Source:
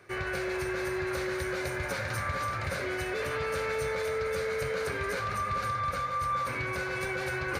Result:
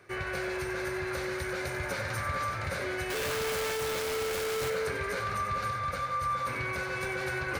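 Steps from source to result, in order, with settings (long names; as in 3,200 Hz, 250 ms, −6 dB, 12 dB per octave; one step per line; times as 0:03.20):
0:03.10–0:04.70: sign of each sample alone
feedback echo with a high-pass in the loop 93 ms, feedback 33%, level −8.5 dB
level −1 dB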